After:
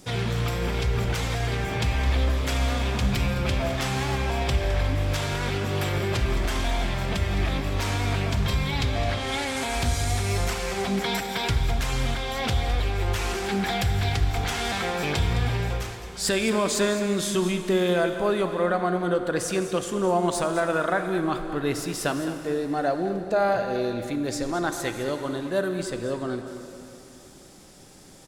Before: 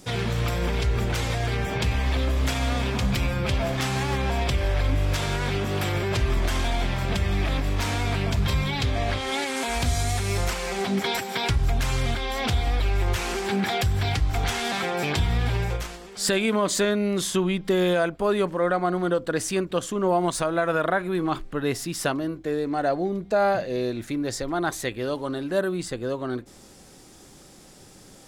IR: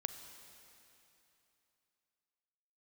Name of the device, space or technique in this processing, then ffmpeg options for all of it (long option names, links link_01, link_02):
cave: -filter_complex "[0:a]aecho=1:1:212:0.237[link_01];[1:a]atrim=start_sample=2205[link_02];[link_01][link_02]afir=irnorm=-1:irlink=0"